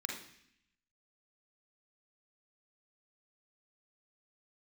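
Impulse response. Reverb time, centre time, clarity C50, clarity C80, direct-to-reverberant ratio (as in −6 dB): 0.70 s, 38 ms, 3.0 dB, 8.5 dB, −1.0 dB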